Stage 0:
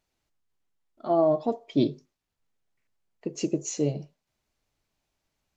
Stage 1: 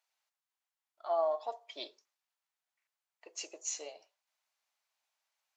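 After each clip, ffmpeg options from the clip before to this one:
-af "highpass=f=720:w=0.5412,highpass=f=720:w=1.3066,volume=-3dB"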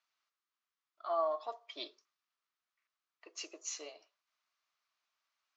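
-af "highpass=200,equalizer=f=310:t=q:w=4:g=4,equalizer=f=520:t=q:w=4:g=-6,equalizer=f=820:t=q:w=4:g=-8,equalizer=f=1.2k:t=q:w=4:g=8,lowpass=f=6.1k:w=0.5412,lowpass=f=6.1k:w=1.3066"

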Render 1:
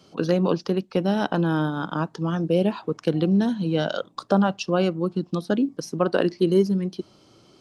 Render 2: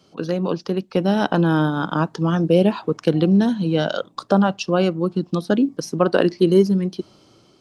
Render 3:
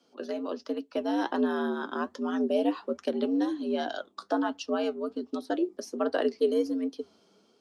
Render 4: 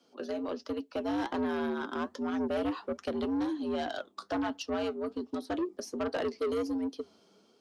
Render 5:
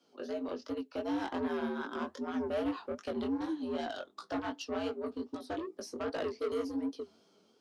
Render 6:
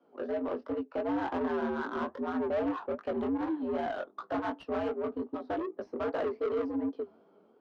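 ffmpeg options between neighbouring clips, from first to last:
-af "dynaudnorm=f=340:g=5:m=11.5dB,volume=-2dB"
-af "flanger=delay=4.3:depth=5.4:regen=62:speed=1.3:shape=triangular,afreqshift=82,volume=-6.5dB"
-af "asoftclip=type=tanh:threshold=-27dB"
-af "flanger=delay=17.5:depth=5.7:speed=2.6"
-filter_complex "[0:a]asplit=2[a][b];[b]highpass=f=720:p=1,volume=14dB,asoftclip=type=tanh:threshold=-27dB[c];[a][c]amix=inputs=2:normalize=0,lowpass=f=1.9k:p=1,volume=-6dB,adynamicsmooth=sensitivity=3:basefreq=1.1k,volume=3.5dB"

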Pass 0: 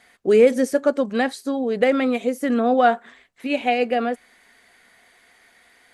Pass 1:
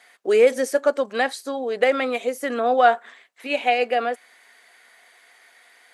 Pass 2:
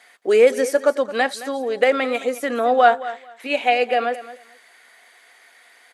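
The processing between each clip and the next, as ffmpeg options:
-af "highpass=490,volume=2dB"
-af "aecho=1:1:219|438:0.168|0.0302,volume=2dB"

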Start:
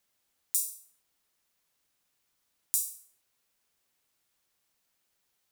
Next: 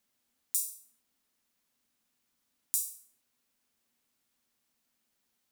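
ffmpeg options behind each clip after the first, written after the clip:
-af "equalizer=f=240:t=o:w=0.42:g=12.5,volume=-2dB"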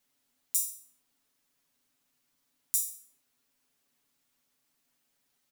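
-af "aecho=1:1:7.1:0.83"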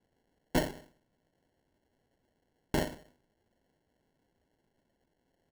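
-af "acrusher=samples=36:mix=1:aa=0.000001"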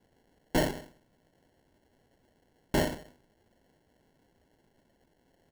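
-af "asoftclip=type=tanh:threshold=-28dB,volume=8dB"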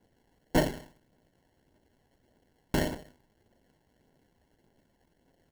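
-af "acrusher=bits=2:mode=log:mix=0:aa=0.000001,aphaser=in_gain=1:out_gain=1:delay=1.2:decay=0.26:speed=1.7:type=triangular,volume=-2dB"

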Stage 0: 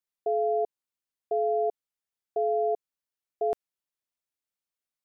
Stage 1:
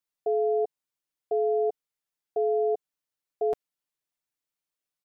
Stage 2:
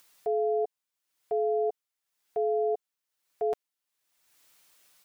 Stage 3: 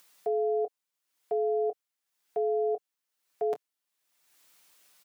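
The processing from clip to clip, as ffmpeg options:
-af "aecho=1:1:6.7:0.58"
-af "lowshelf=f=490:g=-8,acompressor=mode=upward:threshold=-44dB:ratio=2.5,volume=2dB"
-filter_complex "[0:a]highpass=f=130:w=0.5412,highpass=f=130:w=1.3066,asplit=2[a][b];[b]adelay=24,volume=-12dB[c];[a][c]amix=inputs=2:normalize=0"

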